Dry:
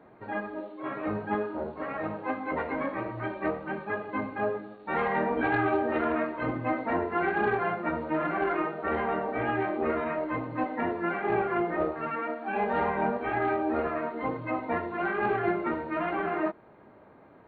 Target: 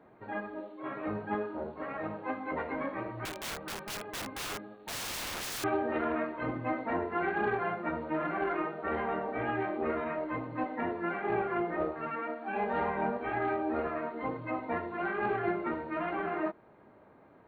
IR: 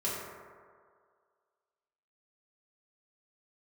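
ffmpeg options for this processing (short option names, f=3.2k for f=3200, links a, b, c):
-filter_complex "[0:a]asettb=1/sr,asplit=3[a][b][c];[a]atrim=end=3.254[d];[b]atrim=start=3.25:end=5.64,asetpts=PTS-STARTPTS,afade=t=in:d=0.004:c=qsin,afade=t=out:st=2.386:d=0.004:c=qsin,aeval=exprs='(mod(28.2*val(0)+1,2)-1)/28.2':c=same[e];[c]atrim=start=5.636[f];[d][e]acrossfade=d=0.004:c1=hsin:c2=qsin[g];[g][f]acrossfade=d=0.004:c1=qsin:c2=hsin,volume=-4dB"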